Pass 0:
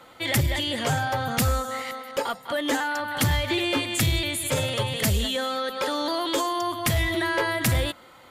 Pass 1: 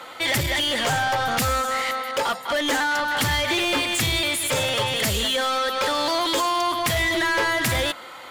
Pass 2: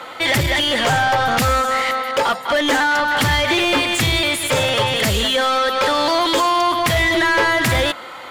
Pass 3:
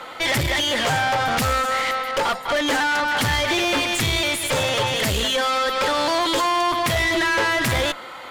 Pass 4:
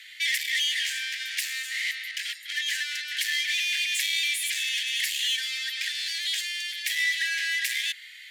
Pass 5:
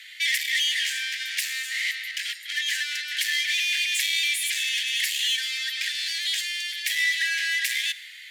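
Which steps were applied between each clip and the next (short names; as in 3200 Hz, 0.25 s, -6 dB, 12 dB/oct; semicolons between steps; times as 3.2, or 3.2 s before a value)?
overdrive pedal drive 18 dB, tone 7400 Hz, clips at -16.5 dBFS
high shelf 4900 Hz -7 dB; gain +6.5 dB
tube stage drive 16 dB, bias 0.55
steep high-pass 1700 Hz 96 dB/oct; gain -3 dB
digital reverb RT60 1.5 s, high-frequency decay 1×, DRR 18 dB; gain +2 dB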